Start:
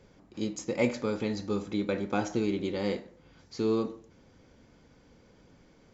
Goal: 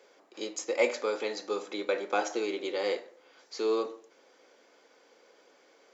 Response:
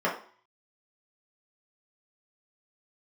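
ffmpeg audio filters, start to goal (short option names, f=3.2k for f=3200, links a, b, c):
-af "highpass=f=410:w=0.5412,highpass=f=410:w=1.3066,bandreject=f=920:w=22,volume=3.5dB"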